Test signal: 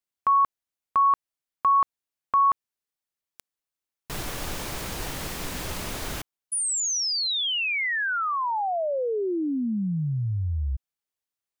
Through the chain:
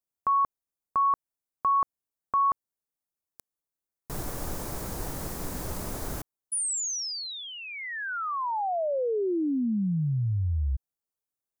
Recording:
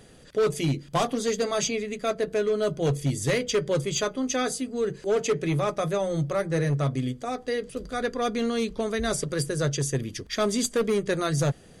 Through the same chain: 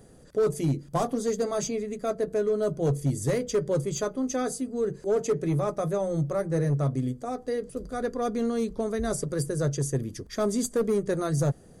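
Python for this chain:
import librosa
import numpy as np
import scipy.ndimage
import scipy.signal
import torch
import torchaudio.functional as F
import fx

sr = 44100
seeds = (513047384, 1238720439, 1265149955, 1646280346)

y = fx.peak_eq(x, sr, hz=2900.0, db=-14.0, octaves=1.7)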